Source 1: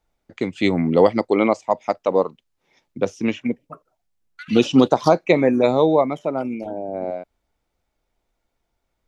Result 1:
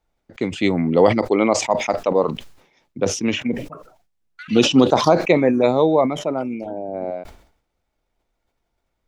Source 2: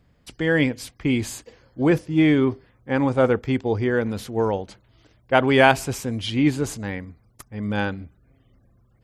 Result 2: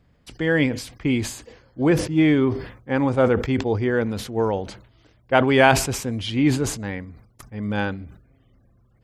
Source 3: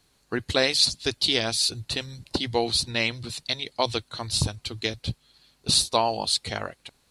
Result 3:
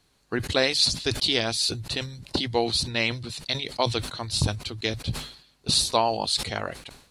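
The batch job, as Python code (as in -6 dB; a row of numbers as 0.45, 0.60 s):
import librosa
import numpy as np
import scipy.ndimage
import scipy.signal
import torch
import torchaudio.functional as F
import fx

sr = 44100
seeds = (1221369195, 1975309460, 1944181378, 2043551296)

y = fx.high_shelf(x, sr, hz=6700.0, db=-4.5)
y = fx.sustainer(y, sr, db_per_s=96.0)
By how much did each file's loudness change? +1.0, +0.5, 0.0 LU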